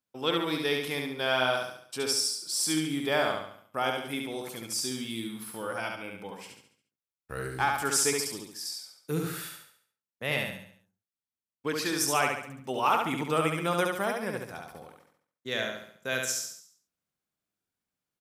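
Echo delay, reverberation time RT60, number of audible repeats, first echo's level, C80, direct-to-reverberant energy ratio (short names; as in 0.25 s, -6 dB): 70 ms, none, 5, -3.5 dB, none, none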